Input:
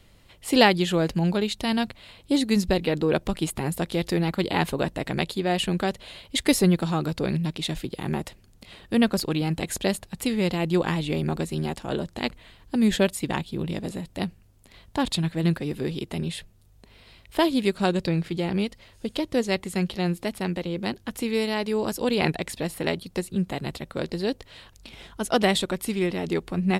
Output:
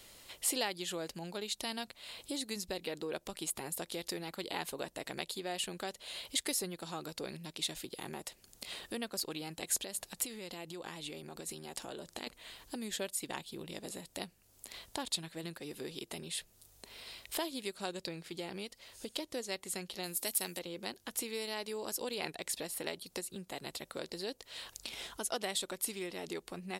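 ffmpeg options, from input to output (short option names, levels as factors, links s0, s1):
-filter_complex "[0:a]asettb=1/sr,asplit=3[s0][s1][s2];[s0]atrim=end=9.834[s3];[s1]atrim=start=9.83:end=12.27,asetpts=PTS-STARTPTS,afade=t=in:d=0.004:c=qsin,afade=t=out:st=2.436:d=0.004:c=qsin,acompressor=threshold=0.0282:ratio=6:attack=3.2:release=140:knee=1:detection=peak[s4];[s2]atrim=start=12.266[s5];[s3][s4]acrossfade=d=0.004:c1=hsin:c2=qsin[s6];[s6][s5]acrossfade=d=0.004:c1=qsin:c2=hsin,asettb=1/sr,asplit=3[s7][s8][s9];[s7]atrim=end=20.034[s10];[s8]atrim=start=20.03:end=20.59,asetpts=PTS-STARTPTS,afade=t=in:d=0.004:c=qsin,afade=t=out:st=0.556:d=0.004:c=qsin,aemphasis=mode=production:type=75fm[s11];[s9]atrim=start=20.586[s12];[s10][s11]acrossfade=d=0.004:c1=hsin:c2=qsin[s13];[s13][s12]acrossfade=d=0.004:c1=qsin:c2=hsin,acompressor=threshold=0.00708:ratio=2.5,bass=f=250:g=-13,treble=f=4000:g=10,volume=1.12"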